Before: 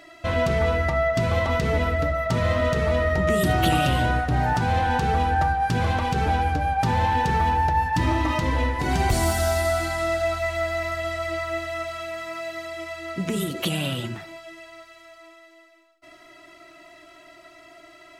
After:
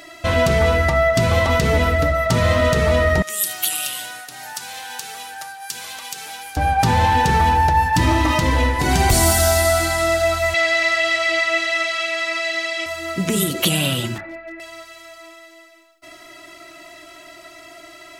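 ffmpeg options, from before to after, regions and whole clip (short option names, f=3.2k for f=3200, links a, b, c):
-filter_complex "[0:a]asettb=1/sr,asplit=3[a][b][c];[a]atrim=end=3.224[d];[b]atrim=start=3.22:end=6.57,asetpts=PTS-STARTPTS,afade=t=in:d=0.004:c=qsin,afade=t=out:st=3.346:d=0.004:c=qsin,highpass=f=100:w=0.5412,highpass=f=100:w=1.3066,aderivative[e];[c]atrim=start=6.566[f];[d][e]acrossfade=d=0.004:c1=hsin:c2=qsin[g];[g][f]acrossfade=d=0.004:c1=qsin:c2=hsin,asettb=1/sr,asplit=3[h][i][j];[h]atrim=end=10.544[k];[i]atrim=start=10.54:end=12.86,asetpts=PTS-STARTPTS,afade=t=in:d=0.004:c=qsin,afade=t=out:st=2.316:d=0.004:c=qsin,highpass=330,lowpass=5.2k,highshelf=f=1.6k:t=q:w=1.5:g=6.5,asplit=2[l][m];[m]adelay=49,volume=-12dB[n];[l][n]amix=inputs=2:normalize=0,atrim=end_sample=102312[o];[j]atrim=start=12.856[p];[k][o]acrossfade=d=0.004:c1=hsin:c2=qsin[q];[q][p]acrossfade=d=0.004:c1=qsin:c2=hsin,asettb=1/sr,asplit=3[r][s][t];[r]atrim=end=14.184[u];[s]atrim=start=14.18:end=14.6,asetpts=PTS-STARTPTS,afade=t=in:d=0.004:c=qsin,afade=t=out:st=0.416:d=0.004:c=qsin,lowpass=f=2k:w=0.5412,lowpass=f=2k:w=1.3066,aecho=1:1:3.5:0.68,atrim=end_sample=18522,aeval=exprs='clip(val(0),-1,0.02)':c=same[v];[t]atrim=start=14.596[w];[u][v]acrossfade=d=0.004:c1=hsin:c2=qsin[x];[x][w]acrossfade=d=0.004:c1=qsin:c2=hsin,highshelf=f=4.4k:g=9.5,acontrast=41"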